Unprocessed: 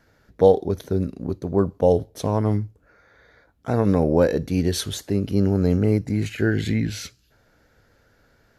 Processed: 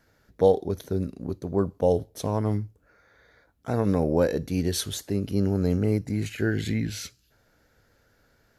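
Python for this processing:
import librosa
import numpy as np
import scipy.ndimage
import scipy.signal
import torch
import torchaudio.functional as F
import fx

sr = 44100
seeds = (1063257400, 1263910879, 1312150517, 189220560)

y = fx.high_shelf(x, sr, hz=5900.0, db=6.0)
y = y * 10.0 ** (-4.5 / 20.0)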